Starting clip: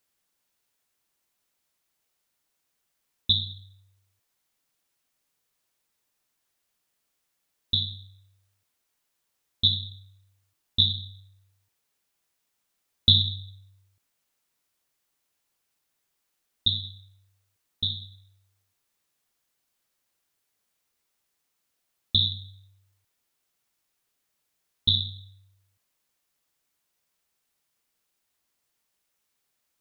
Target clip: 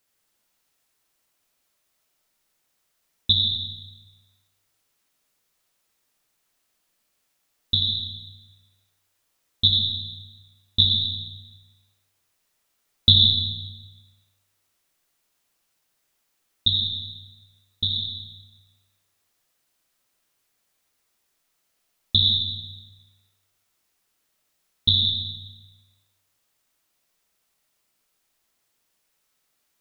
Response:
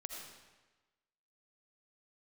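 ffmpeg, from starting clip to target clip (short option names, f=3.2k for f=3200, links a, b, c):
-filter_complex "[1:a]atrim=start_sample=2205[a];[0:a][a]afir=irnorm=-1:irlink=0,volume=7.5dB"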